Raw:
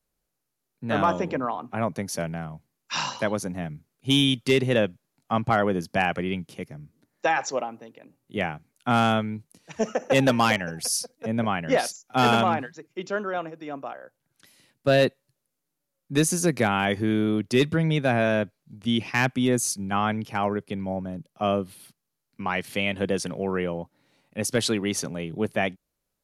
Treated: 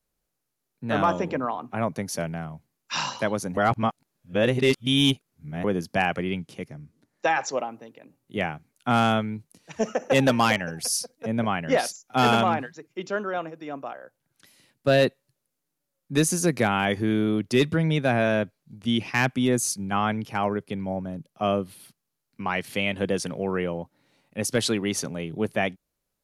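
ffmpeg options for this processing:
ffmpeg -i in.wav -filter_complex "[0:a]asettb=1/sr,asplit=3[link_01][link_02][link_03];[link_01]atrim=end=6.374[link_04];[link_02]atrim=start=6.37:end=7.57,asetpts=PTS-STARTPTS,afade=type=in:duration=0.004:curve=qsin,afade=type=out:start_time=1.196:duration=0.004:curve=qsin,lowpass=11000[link_05];[link_03]atrim=start=7.566[link_06];[link_04][link_05]acrossfade=duration=0.004:curve1=hsin:curve2=qsin[link_07];[link_07][link_06]acrossfade=duration=0.004:curve1=qsin:curve2=hsin,asplit=3[link_08][link_09][link_10];[link_08]atrim=end=3.572[link_11];[link_09]atrim=start=3.568:end=5.642,asetpts=PTS-STARTPTS,areverse[link_12];[link_10]atrim=start=5.638[link_13];[link_11][link_12]acrossfade=duration=0.004:curve1=hsin:curve2=hsin[link_14];[link_14][link_13]acrossfade=duration=0.004:curve1=hsin:curve2=hsin" out.wav

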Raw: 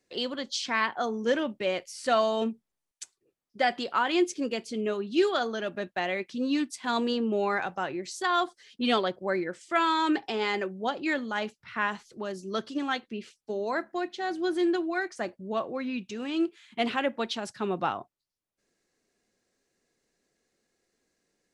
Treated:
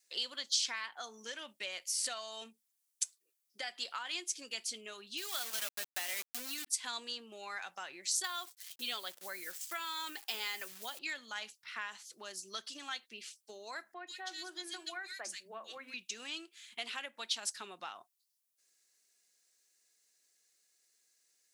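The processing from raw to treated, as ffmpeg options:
ffmpeg -i in.wav -filter_complex "[0:a]asplit=3[link_01][link_02][link_03];[link_01]afade=type=out:start_time=5.17:duration=0.02[link_04];[link_02]aeval=exprs='val(0)*gte(abs(val(0)),0.0237)':channel_layout=same,afade=type=in:start_time=5.17:duration=0.02,afade=type=out:start_time=6.66:duration=0.02[link_05];[link_03]afade=type=in:start_time=6.66:duration=0.02[link_06];[link_04][link_05][link_06]amix=inputs=3:normalize=0,asettb=1/sr,asplit=3[link_07][link_08][link_09];[link_07]atrim=end=8.244[link_10];[link_08]atrim=start=8.24:end=10.99,asetpts=PTS-STARTPTS,afade=type=in:duration=0.004:curve=qsin,afade=type=out:start_time=2.746:duration=0.004:curve=qsin,acrusher=bits=9:dc=4:mix=0:aa=0.000001[link_11];[link_09]atrim=start=10.986[link_12];[link_10][link_11]acrossfade=duration=0.004:curve1=hsin:curve2=qsin[link_13];[link_13][link_12]acrossfade=duration=0.004:curve1=qsin:curve2=hsin,asettb=1/sr,asplit=3[link_14][link_15][link_16];[link_14]atrim=end=13.944[link_17];[link_15]atrim=start=13.94:end=15.94,asetpts=PTS-STARTPTS,afade=type=in:duration=0.004:curve=qsin,afade=type=out:start_time=1.996:duration=0.004:curve=qsin,acrossover=split=260|2200[link_18][link_19][link_20];[link_18]adelay=60[link_21];[link_20]adelay=130[link_22];[link_21][link_19][link_22]amix=inputs=3:normalize=0,atrim=end_sample=88200[link_23];[link_16]atrim=start=15.936[link_24];[link_17][link_23]acrossfade=duration=0.004:curve1=hsin:curve2=qsin[link_25];[link_25][link_24]acrossfade=duration=0.004:curve1=qsin:curve2=hsin,adynamicequalizer=threshold=0.00891:dfrequency=400:dqfactor=1.5:tfrequency=400:tqfactor=1.5:attack=5:release=100:ratio=0.375:range=2.5:mode=cutabove:tftype=bell,acompressor=threshold=-32dB:ratio=6,aderivative,volume=8.5dB" out.wav

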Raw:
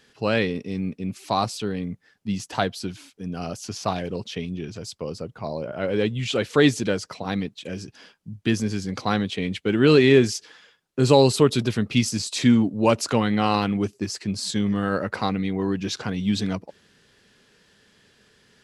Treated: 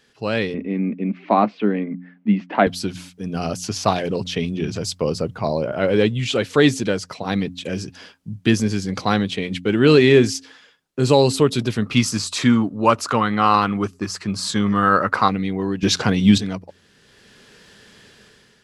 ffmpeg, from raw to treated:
ffmpeg -i in.wav -filter_complex "[0:a]asettb=1/sr,asplit=3[link_01][link_02][link_03];[link_01]atrim=end=0.544[link_04];[link_02]atrim=start=0.54:end=2.67,asetpts=PTS-STARTPTS,afade=type=in:duration=0.004:curve=qsin,afade=type=out:start_time=2.126:duration=0.004:curve=qsin,highpass=frequency=210:width=0.5412,highpass=frequency=210:width=1.3066,equalizer=frequency=210:width_type=q:width=4:gain=9,equalizer=frequency=310:width_type=q:width=4:gain=6,equalizer=frequency=610:width_type=q:width=4:gain=4,equalizer=frequency=2100:width_type=q:width=4:gain=5,lowpass=frequency=2500:width=0.5412,lowpass=frequency=2500:width=1.3066[link_05];[link_03]atrim=start=2.666[link_06];[link_04][link_05]acrossfade=duration=0.004:curve1=hsin:curve2=qsin[link_07];[link_07][link_06]acrossfade=duration=0.004:curve1=qsin:curve2=hsin,asettb=1/sr,asplit=3[link_08][link_09][link_10];[link_08]atrim=end=11.824[link_11];[link_09]atrim=start=11.82:end=15.28,asetpts=PTS-STARTPTS,afade=type=in:duration=0.004:curve=qsin,afade=type=out:start_time=3.456:duration=0.004:curve=qsin,equalizer=frequency=1200:width=1.9:gain=13[link_12];[link_10]atrim=start=15.276[link_13];[link_11][link_12]acrossfade=duration=0.004:curve1=hsin:curve2=qsin[link_14];[link_14][link_13]acrossfade=duration=0.004:curve1=qsin:curve2=hsin,asplit=3[link_15][link_16][link_17];[link_15]atrim=end=15.832[link_18];[link_16]atrim=start=15.828:end=16.382,asetpts=PTS-STARTPTS,volume=10dB[link_19];[link_17]atrim=start=16.378[link_20];[link_18][link_19]acrossfade=duration=0.004:curve1=hsin:curve2=hsin[link_21];[link_21][link_20]acrossfade=duration=0.004:curve1=hsin:curve2=hsin,bandreject=frequency=89.48:width_type=h:width=4,bandreject=frequency=178.96:width_type=h:width=4,bandreject=frequency=268.44:width_type=h:width=4,dynaudnorm=framelen=250:gausssize=5:maxgain=11.5dB,volume=-1dB" out.wav

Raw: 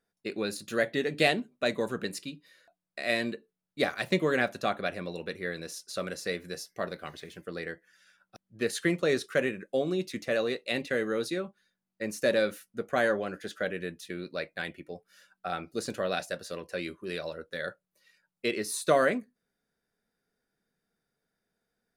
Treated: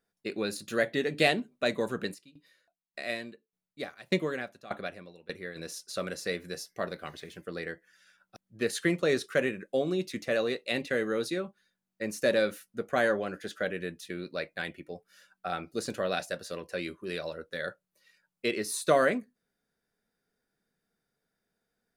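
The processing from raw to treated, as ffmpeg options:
ffmpeg -i in.wav -filter_complex "[0:a]asplit=3[link_01][link_02][link_03];[link_01]afade=type=out:start_time=2.13:duration=0.02[link_04];[link_02]aeval=exprs='val(0)*pow(10,-20*if(lt(mod(1.7*n/s,1),2*abs(1.7)/1000),1-mod(1.7*n/s,1)/(2*abs(1.7)/1000),(mod(1.7*n/s,1)-2*abs(1.7)/1000)/(1-2*abs(1.7)/1000))/20)':channel_layout=same,afade=type=in:start_time=2.13:duration=0.02,afade=type=out:start_time=5.55:duration=0.02[link_05];[link_03]afade=type=in:start_time=5.55:duration=0.02[link_06];[link_04][link_05][link_06]amix=inputs=3:normalize=0" out.wav

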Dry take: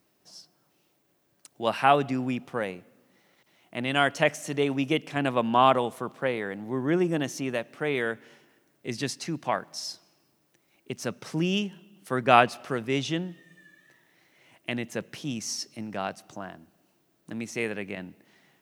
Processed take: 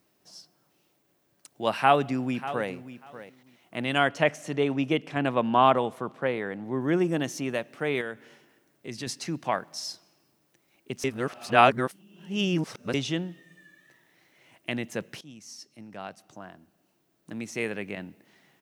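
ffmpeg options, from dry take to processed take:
ffmpeg -i in.wav -filter_complex "[0:a]asplit=2[link_01][link_02];[link_02]afade=type=in:start_time=1.75:duration=0.01,afade=type=out:start_time=2.7:duration=0.01,aecho=0:1:590|1180:0.199526|0.0299289[link_03];[link_01][link_03]amix=inputs=2:normalize=0,asettb=1/sr,asplit=3[link_04][link_05][link_06];[link_04]atrim=end=3.984[link_07];[link_05]atrim=start=3.98:end=6.81,asetpts=PTS-STARTPTS,afade=type=in:duration=0.004:curve=qsin,afade=type=out:start_time=2.826:duration=0.004:curve=qsin,aemphasis=mode=reproduction:type=cd[link_08];[link_06]atrim=start=6.806[link_09];[link_07][link_08]acrossfade=duration=0.004:curve1=hsin:curve2=qsin[link_10];[link_10][link_09]acrossfade=duration=0.004:curve1=qsin:curve2=hsin,asettb=1/sr,asplit=3[link_11][link_12][link_13];[link_11]atrim=end=8.014[link_14];[link_12]atrim=start=8.01:end=9.07,asetpts=PTS-STARTPTS,afade=type=in:duration=0.004:curve=qsin,afade=type=out:start_time=1.056:duration=0.004:curve=qsin,acompressor=threshold=-40dB:ratio=1.5:attack=3.2:release=140:knee=1:detection=peak[link_15];[link_13]atrim=start=9.066[link_16];[link_14][link_15]acrossfade=duration=0.004:curve1=hsin:curve2=qsin[link_17];[link_17][link_16]acrossfade=duration=0.004:curve1=qsin:curve2=hsin,asplit=4[link_18][link_19][link_20][link_21];[link_18]atrim=end=11.042[link_22];[link_19]atrim=start=11.038:end=12.942,asetpts=PTS-STARTPTS,areverse[link_23];[link_20]atrim=start=12.938:end=15.21,asetpts=PTS-STARTPTS,afade=type=out:start_time=2.268:duration=0.004:curve=hsin:silence=0.149624[link_24];[link_21]atrim=start=15.21,asetpts=PTS-STARTPTS,afade=type=in:duration=2.58:silence=0.149624[link_25];[link_22][link_23]acrossfade=duration=0.004:curve1=hsin:curve2=hsin[link_26];[link_24][link_25]concat=n=2:v=0:a=1[link_27];[link_26][link_27]acrossfade=duration=0.004:curve1=hsin:curve2=hsin" out.wav

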